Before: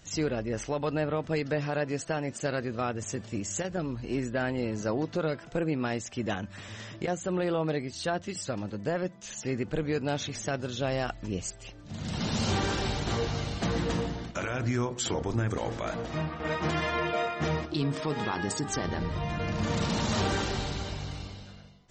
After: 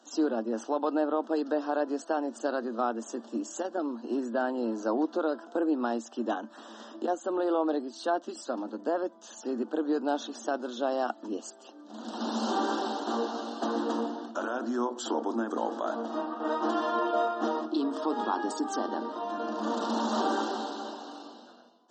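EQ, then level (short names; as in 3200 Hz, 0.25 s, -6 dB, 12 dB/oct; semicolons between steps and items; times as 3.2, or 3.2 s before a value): rippled Chebyshev high-pass 220 Hz, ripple 6 dB; Butterworth band-stop 2200 Hz, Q 1.4; LPF 3200 Hz 6 dB/oct; +5.5 dB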